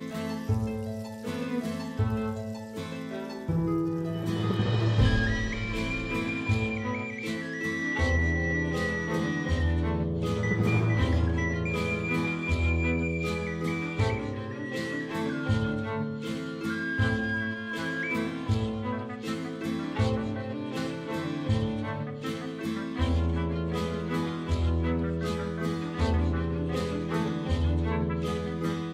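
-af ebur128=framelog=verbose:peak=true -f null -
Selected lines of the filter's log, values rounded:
Integrated loudness:
  I:         -29.6 LUFS
  Threshold: -39.6 LUFS
Loudness range:
  LRA:         4.0 LU
  Threshold: -49.5 LUFS
  LRA low:   -31.5 LUFS
  LRA high:  -27.5 LUFS
True peak:
  Peak:      -12.2 dBFS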